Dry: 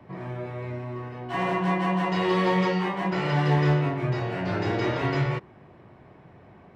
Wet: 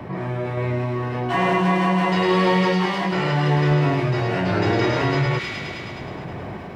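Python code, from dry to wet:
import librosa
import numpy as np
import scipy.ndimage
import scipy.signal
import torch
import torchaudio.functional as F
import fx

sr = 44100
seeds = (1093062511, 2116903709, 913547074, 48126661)

y = fx.tremolo_random(x, sr, seeds[0], hz=3.5, depth_pct=55)
y = fx.echo_wet_highpass(y, sr, ms=105, feedback_pct=70, hz=2800.0, wet_db=-4.0)
y = fx.env_flatten(y, sr, amount_pct=50)
y = F.gain(torch.from_numpy(y), 4.0).numpy()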